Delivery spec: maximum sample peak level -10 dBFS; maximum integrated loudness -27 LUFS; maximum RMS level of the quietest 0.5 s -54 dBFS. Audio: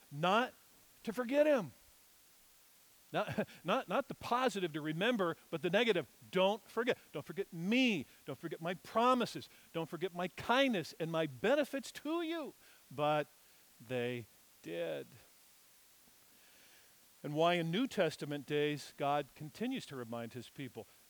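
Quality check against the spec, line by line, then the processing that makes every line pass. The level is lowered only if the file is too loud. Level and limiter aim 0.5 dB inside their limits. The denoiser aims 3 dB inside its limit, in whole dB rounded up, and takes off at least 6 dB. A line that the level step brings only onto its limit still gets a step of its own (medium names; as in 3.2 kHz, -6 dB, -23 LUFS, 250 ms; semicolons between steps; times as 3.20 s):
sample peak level -18.5 dBFS: pass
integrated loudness -36.5 LUFS: pass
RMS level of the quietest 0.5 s -65 dBFS: pass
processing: none needed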